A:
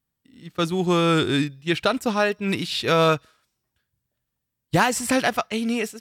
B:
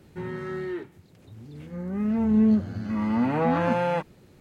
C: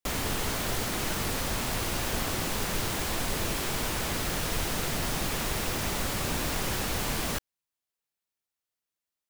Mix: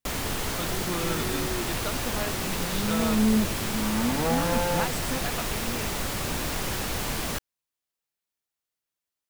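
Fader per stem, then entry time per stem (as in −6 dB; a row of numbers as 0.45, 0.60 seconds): −13.5, −3.0, +0.5 decibels; 0.00, 0.85, 0.00 seconds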